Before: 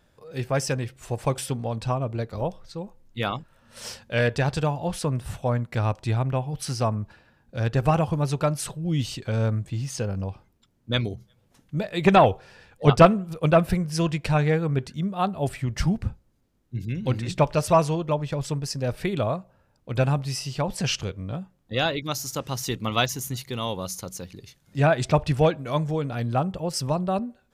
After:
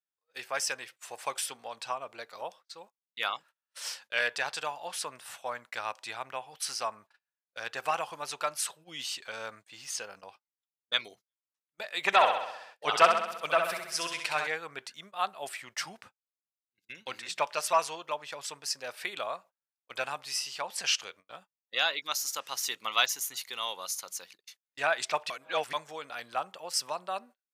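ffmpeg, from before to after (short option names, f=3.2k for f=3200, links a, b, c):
-filter_complex "[0:a]asettb=1/sr,asplit=3[a][b][c];[a]atrim=end=12.064[d];[b]atrim=start=12.06:end=14.47,asetpts=PTS-STARTPTS,afade=t=in:d=0.004:c=qsin,afade=t=out:st=2.406:d=0.004:c=qsin,aecho=1:1:65|130|195|260|325|390|455|520:0.501|0.291|0.169|0.0978|0.0567|0.0329|0.0191|0.0111,atrim=end_sample=106281[e];[c]atrim=start=14.466[f];[d][e]acrossfade=d=0.004:c1=hsin:c2=qsin[g];[g][f]acrossfade=d=0.004:c1=qsin:c2=hsin,asplit=3[h][i][j];[h]atrim=end=25.302[k];[i]atrim=start=25.298:end=25.732,asetpts=PTS-STARTPTS,areverse[l];[j]atrim=start=25.728[m];[k][l]acrossfade=d=0.004:c1=hsin:c2=hsin[n];[n][m]acrossfade=d=0.004:c1=hsin:c2=hsin,highpass=1.1k,agate=range=-34dB:threshold=-51dB:ratio=16:detection=peak"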